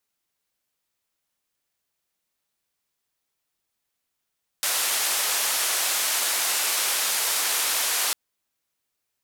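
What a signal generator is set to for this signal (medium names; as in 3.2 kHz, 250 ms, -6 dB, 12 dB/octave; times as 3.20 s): noise band 580–13000 Hz, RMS -24.5 dBFS 3.50 s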